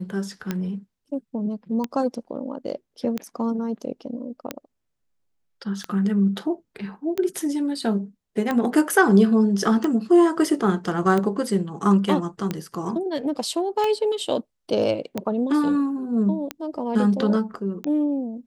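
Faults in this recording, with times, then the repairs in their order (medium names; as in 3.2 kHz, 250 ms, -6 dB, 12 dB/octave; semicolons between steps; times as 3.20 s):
tick 45 rpm -12 dBFS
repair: de-click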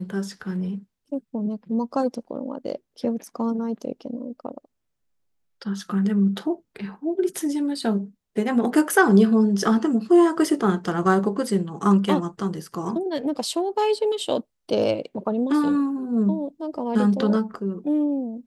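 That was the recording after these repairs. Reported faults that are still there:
nothing left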